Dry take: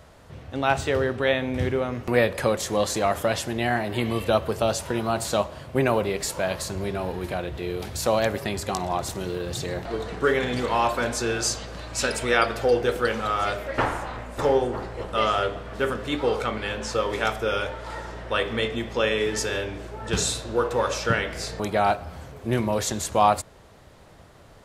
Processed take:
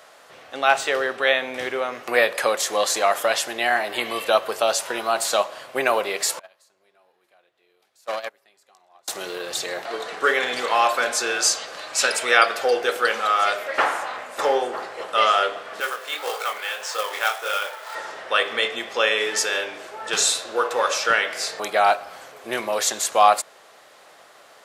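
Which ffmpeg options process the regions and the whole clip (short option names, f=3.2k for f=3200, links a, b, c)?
-filter_complex "[0:a]asettb=1/sr,asplit=3[a][b][c];[a]atrim=end=6.394[d];[b]atrim=start=6.39:end=9.08,asetpts=PTS-STARTPTS,afade=t=in:d=0.004:c=qsin,afade=t=out:st=2.686:d=0.004:c=qsin,agate=range=-30dB:threshold=-21dB:ratio=16:release=100:detection=peak,aeval=exprs='(tanh(15.8*val(0)+0.6)-tanh(0.6))/15.8':c=same[e];[c]atrim=start=9.076[f];[d][e]acrossfade=d=0.004:c1=hsin:c2=qsin[g];[g][f]acrossfade=d=0.004:c1=qsin:c2=hsin,asettb=1/sr,asplit=3[h][i][j];[h]atrim=end=15.804[k];[i]atrim=start=15.8:end=17.95,asetpts=PTS-STARTPTS,afade=t=in:d=0.004:c=qsin,afade=t=out:st=2.146:d=0.004:c=qsin,highpass=530,flanger=delay=18.5:depth=7.4:speed=1.7,acrusher=bits=3:mode=log:mix=0:aa=0.000001[l];[j]atrim=start=17.946[m];[k][l]acrossfade=d=0.004:c1=hsin:c2=qsin[n];[n][m]acrossfade=d=0.004:c1=qsin:c2=hsin,highpass=670,bandreject=f=940:w=14,volume=6.5dB"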